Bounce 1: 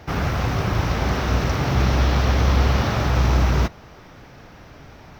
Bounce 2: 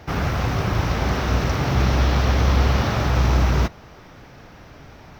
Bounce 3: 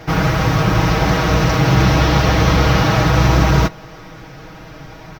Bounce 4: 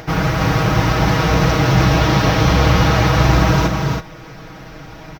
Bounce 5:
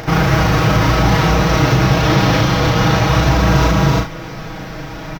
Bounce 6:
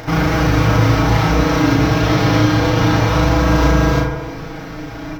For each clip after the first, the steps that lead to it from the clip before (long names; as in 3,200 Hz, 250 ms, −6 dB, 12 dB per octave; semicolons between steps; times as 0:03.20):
no processing that can be heard
comb filter 6.3 ms, depth 77%; level +6 dB
on a send: multi-tap delay 284/326 ms −7.5/−6.5 dB; on the sum: upward compression, threshold −30 dBFS; level −1.5 dB
brickwall limiter −12 dBFS, peak gain reduction 10.5 dB; on a send: ambience of single reflections 36 ms −3 dB, 68 ms −8.5 dB; on the sum: level +5 dB
feedback delay network reverb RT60 1.6 s, low-frequency decay 0.8×, high-frequency decay 0.25×, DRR 2.5 dB; level −4 dB